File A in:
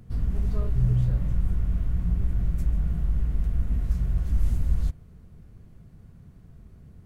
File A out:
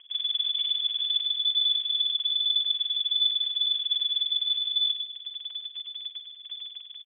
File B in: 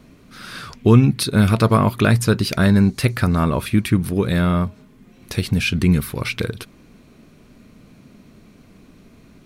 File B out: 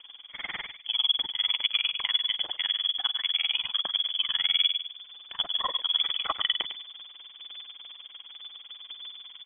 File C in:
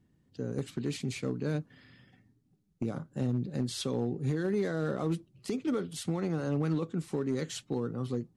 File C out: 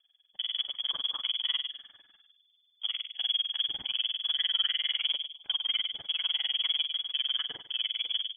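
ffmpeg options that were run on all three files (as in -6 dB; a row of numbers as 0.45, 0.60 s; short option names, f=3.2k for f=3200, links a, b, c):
-filter_complex "[0:a]asubboost=boost=3.5:cutoff=52,areverse,acompressor=threshold=-27dB:ratio=12,areverse,tremolo=f=20:d=0.98,asplit=2[a][b];[b]aeval=exprs='val(0)*gte(abs(val(0)),0.0119)':c=same,volume=-6dB[c];[a][c]amix=inputs=2:normalize=0,asplit=2[d][e];[e]adelay=102,lowpass=f=1.1k:p=1,volume=-5dB,asplit=2[f][g];[g]adelay=102,lowpass=f=1.1k:p=1,volume=0.36,asplit=2[h][i];[i]adelay=102,lowpass=f=1.1k:p=1,volume=0.36,asplit=2[j][k];[k]adelay=102,lowpass=f=1.1k:p=1,volume=0.36[l];[d][f][h][j][l]amix=inputs=5:normalize=0,lowpass=f=3k:t=q:w=0.5098,lowpass=f=3k:t=q:w=0.6013,lowpass=f=3k:t=q:w=0.9,lowpass=f=3k:t=q:w=2.563,afreqshift=-3500,volume=2dB"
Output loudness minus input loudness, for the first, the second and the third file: +3.0, -8.0, +4.5 LU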